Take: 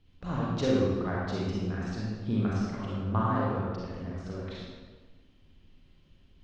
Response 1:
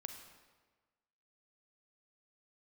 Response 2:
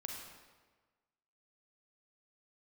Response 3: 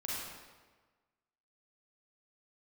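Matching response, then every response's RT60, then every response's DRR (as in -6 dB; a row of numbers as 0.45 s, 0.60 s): 3; 1.4 s, 1.4 s, 1.4 s; 5.5 dB, 0.0 dB, -6.5 dB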